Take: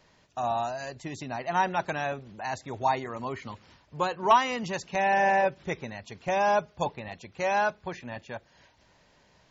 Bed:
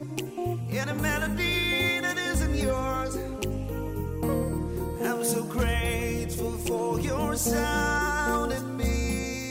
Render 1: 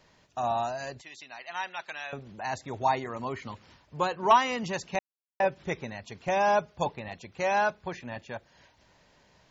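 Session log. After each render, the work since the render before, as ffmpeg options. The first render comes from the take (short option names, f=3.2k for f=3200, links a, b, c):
-filter_complex "[0:a]asettb=1/sr,asplit=3[a][b][c];[a]atrim=end=1.014[d];[b]atrim=start=1.01:end=2.13,asetpts=PTS-STARTPTS,afade=t=in:d=0.004:c=qsin,afade=t=out:st=1.116:d=0.004:c=qsin,bandpass=f=3.1k:t=q:w=1[e];[c]atrim=start=2.126[f];[d][e]acrossfade=d=0.004:c1=hsin:c2=qsin[g];[g][f]acrossfade=d=0.004:c1=qsin:c2=hsin,asplit=3[h][i][j];[h]atrim=end=4.99,asetpts=PTS-STARTPTS,afade=t=out:st=4.986:d=0.004:c=hsin[k];[i]atrim=start=4.99:end=5.4,asetpts=PTS-STARTPTS,volume=0[l];[j]atrim=start=5.4,asetpts=PTS-STARTPTS,afade=t=in:d=0.004:c=hsin[m];[k][l][m]concat=n=3:v=0:a=1"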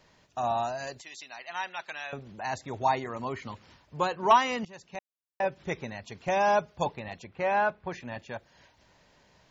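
-filter_complex "[0:a]asettb=1/sr,asplit=3[a][b][c];[a]atrim=end=0.874[d];[b]atrim=start=0.87:end=1.36,asetpts=PTS-STARTPTS,afade=t=in:d=0.004:c=qsin,afade=t=out:st=0.486:d=0.004:c=qsin,bass=f=250:g=-5,treble=f=4k:g=6[e];[c]atrim=start=1.356[f];[d][e]acrossfade=d=0.004:c1=hsin:c2=qsin[g];[g][f]acrossfade=d=0.004:c1=qsin:c2=hsin,asettb=1/sr,asplit=3[h][i][j];[h]atrim=end=7.244[k];[i]atrim=start=7.24:end=7.91,asetpts=PTS-STARTPTS,afade=t=in:d=0.004:c=qsin,afade=t=out:st=0.666:d=0.004:c=qsin,lowpass=2.6k[l];[j]atrim=start=7.906[m];[k][l]acrossfade=d=0.004:c1=hsin:c2=qsin[n];[n][m]acrossfade=d=0.004:c1=qsin:c2=hsin,asplit=2[o][p];[o]atrim=end=4.65,asetpts=PTS-STARTPTS,afade=t=out:st=4.646:d=0.004:c=hsin:silence=0.105925[q];[p]atrim=start=4.65,asetpts=PTS-STARTPTS,afade=t=in:d=1.16:silence=0.105925[r];[q][r]concat=n=2:v=0:a=1"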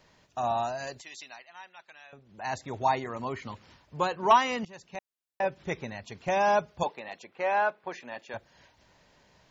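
-filter_complex "[0:a]asettb=1/sr,asplit=3[a][b][c];[a]atrim=end=6.834[d];[b]atrim=start=6.83:end=8.34,asetpts=PTS-STARTPTS,afade=t=in:d=0.004:c=qsin,afade=t=out:st=1.506:d=0.004:c=qsin,highpass=340[e];[c]atrim=start=8.336[f];[d][e]acrossfade=d=0.004:c1=hsin:c2=qsin[g];[g][f]acrossfade=d=0.004:c1=qsin:c2=hsin,asplit=3[h][i][j];[h]atrim=end=1.48,asetpts=PTS-STARTPTS,afade=t=out:st=1.28:d=0.2:silence=0.223872[k];[i]atrim=start=1.48:end=2.28,asetpts=PTS-STARTPTS,volume=-13dB[l];[j]atrim=start=2.28,asetpts=PTS-STARTPTS,afade=t=in:d=0.2:silence=0.223872[m];[k][l][m]concat=n=3:v=0:a=1"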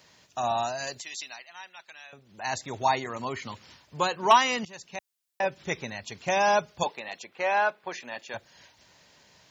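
-af "highpass=71,highshelf=f=2.4k:g=10.5"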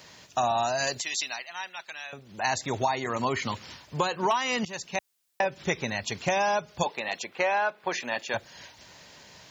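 -filter_complex "[0:a]asplit=2[a][b];[b]alimiter=limit=-19dB:level=0:latency=1:release=438,volume=3dB[c];[a][c]amix=inputs=2:normalize=0,acompressor=threshold=-22dB:ratio=12"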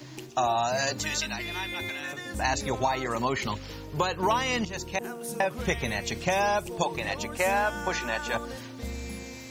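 -filter_complex "[1:a]volume=-9.5dB[a];[0:a][a]amix=inputs=2:normalize=0"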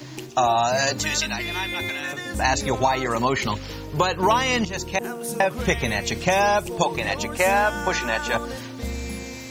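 -af "volume=6dB"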